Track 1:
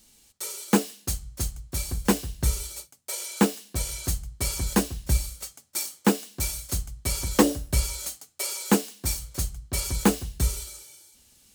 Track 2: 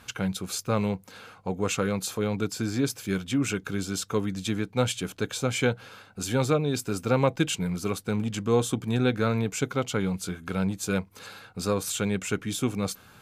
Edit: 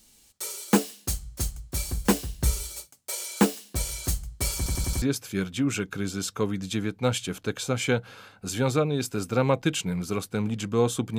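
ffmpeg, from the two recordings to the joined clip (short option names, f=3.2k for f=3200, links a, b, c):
-filter_complex "[0:a]apad=whole_dur=11.18,atrim=end=11.18,asplit=5[a][b][c][d][e];[a]atrim=end=4.662[f];[b]atrim=start=4.568:end=4.662[g];[c]atrim=start=4.568:end=4.662[h];[d]atrim=start=4.568:end=4.662[i];[e]atrim=start=4.568:end=4.662[j];[1:a]atrim=start=2.758:end=8.92[k];[f][g]acrossfade=d=0.004:c1=hsin:c2=hsin[l];[l][h]acrossfade=d=0.004:c1=hsin:c2=hsin[m];[m][i]acrossfade=d=0.004:c1=hsin:c2=hsin[n];[n][j]acrossfade=d=0.004:c1=hsin:c2=hsin[o];[o][k]acrossfade=d=0.004:c1=hsin:c2=hsin"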